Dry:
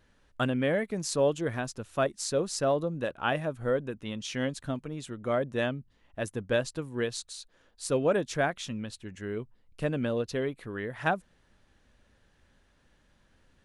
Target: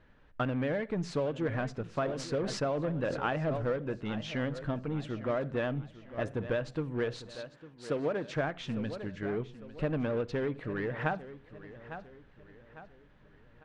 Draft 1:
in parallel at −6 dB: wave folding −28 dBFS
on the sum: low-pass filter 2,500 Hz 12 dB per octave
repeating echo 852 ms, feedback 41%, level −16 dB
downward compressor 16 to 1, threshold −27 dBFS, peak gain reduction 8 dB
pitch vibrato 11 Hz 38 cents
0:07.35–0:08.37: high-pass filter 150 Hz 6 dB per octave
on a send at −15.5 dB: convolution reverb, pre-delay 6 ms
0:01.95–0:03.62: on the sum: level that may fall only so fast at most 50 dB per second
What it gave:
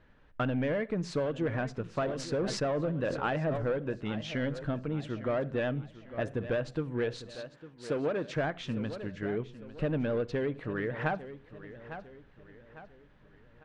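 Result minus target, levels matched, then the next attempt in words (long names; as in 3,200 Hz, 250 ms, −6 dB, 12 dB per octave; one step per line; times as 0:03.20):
wave folding: distortion −9 dB
in parallel at −6 dB: wave folding −34 dBFS
on the sum: low-pass filter 2,500 Hz 12 dB per octave
repeating echo 852 ms, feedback 41%, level −16 dB
downward compressor 16 to 1, threshold −27 dBFS, peak gain reduction 8 dB
pitch vibrato 11 Hz 38 cents
0:07.35–0:08.37: high-pass filter 150 Hz 6 dB per octave
on a send at −15.5 dB: convolution reverb, pre-delay 6 ms
0:01.95–0:03.62: on the sum: level that may fall only so fast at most 50 dB per second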